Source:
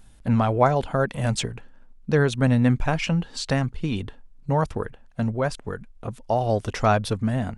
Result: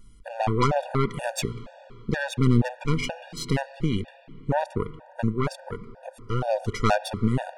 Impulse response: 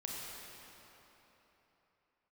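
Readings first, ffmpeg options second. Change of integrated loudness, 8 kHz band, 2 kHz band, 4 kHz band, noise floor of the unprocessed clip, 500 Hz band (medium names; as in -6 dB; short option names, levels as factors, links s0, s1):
-3.0 dB, -2.0 dB, -2.5 dB, -2.0 dB, -50 dBFS, -3.5 dB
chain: -filter_complex "[0:a]aeval=exprs='0.596*(cos(1*acos(clip(val(0)/0.596,-1,1)))-cos(1*PI/2))+0.0668*(cos(6*acos(clip(val(0)/0.596,-1,1)))-cos(6*PI/2))+0.106*(cos(8*acos(clip(val(0)/0.596,-1,1)))-cos(8*PI/2))':c=same,asplit=2[s0][s1];[1:a]atrim=start_sample=2205,lowpass=3300,adelay=5[s2];[s1][s2]afir=irnorm=-1:irlink=0,volume=0.188[s3];[s0][s3]amix=inputs=2:normalize=0,afftfilt=real='re*gt(sin(2*PI*2.1*pts/sr)*(1-2*mod(floor(b*sr/1024/480),2)),0)':imag='im*gt(sin(2*PI*2.1*pts/sr)*(1-2*mod(floor(b*sr/1024/480),2)),0)':win_size=1024:overlap=0.75"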